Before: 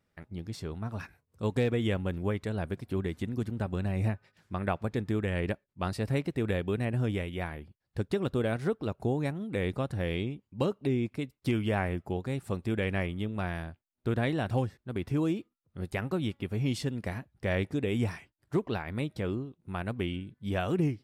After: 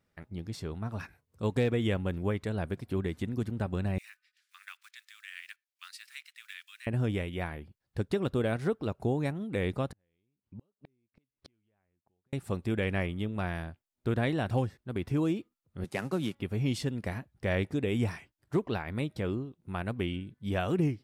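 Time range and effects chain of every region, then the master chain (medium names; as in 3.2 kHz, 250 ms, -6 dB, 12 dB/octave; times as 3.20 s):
3.98–6.87 s: block-companded coder 7-bit + Bessel high-pass 2.6 kHz, order 8 + treble shelf 7.8 kHz -5 dB
9.92–12.33 s: low-pass 4.1 kHz + compression 2:1, threshold -41 dBFS + inverted gate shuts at -35 dBFS, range -39 dB
15.84–16.35 s: CVSD coder 64 kbps + high-pass 130 Hz 24 dB/octave
whole clip: none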